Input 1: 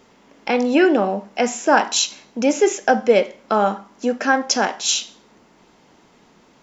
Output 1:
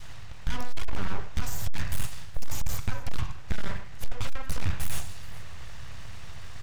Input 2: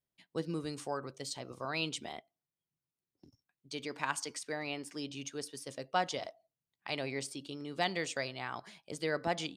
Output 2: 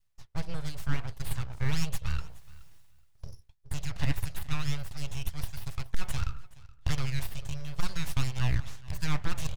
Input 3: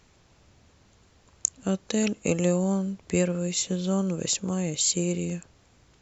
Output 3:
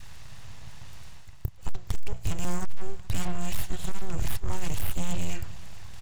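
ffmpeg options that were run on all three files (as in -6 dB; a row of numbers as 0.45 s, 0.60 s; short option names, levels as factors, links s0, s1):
-filter_complex "[0:a]bandreject=f=60:t=h:w=6,bandreject=f=120:t=h:w=6,bandreject=f=180:t=h:w=6,bandreject=f=240:t=h:w=6,bandreject=f=300:t=h:w=6,bandreject=f=360:t=h:w=6,bandreject=f=420:t=h:w=6,bandreject=f=480:t=h:w=6,bandreject=f=540:t=h:w=6,aecho=1:1:1.1:0.49,asplit=2[s0][s1];[s1]highpass=f=720:p=1,volume=2.82,asoftclip=type=tanh:threshold=1[s2];[s0][s2]amix=inputs=2:normalize=0,lowpass=f=4600:p=1,volume=0.501,adynamicequalizer=threshold=0.0251:dfrequency=860:dqfactor=2.3:tfrequency=860:tqfactor=2.3:attack=5:release=100:ratio=0.375:range=3:mode=cutabove:tftype=bell,acrossover=split=1500|4200[s3][s4][s5];[s3]acompressor=threshold=0.0708:ratio=4[s6];[s4]acompressor=threshold=0.0141:ratio=4[s7];[s5]acompressor=threshold=0.0282:ratio=4[s8];[s6][s7][s8]amix=inputs=3:normalize=0,alimiter=limit=0.112:level=0:latency=1:release=364,areverse,acompressor=mode=upward:threshold=0.0112:ratio=2.5,areverse,aeval=exprs='abs(val(0))':c=same,lowshelf=f=170:t=q:w=1.5:g=14,aeval=exprs='clip(val(0),-1,0.133)':c=same,asplit=2[s9][s10];[s10]aecho=0:1:423|846:0.0891|0.0143[s11];[s9][s11]amix=inputs=2:normalize=0,volume=1.12"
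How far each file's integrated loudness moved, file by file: -18.5 LU, +2.5 LU, -9.0 LU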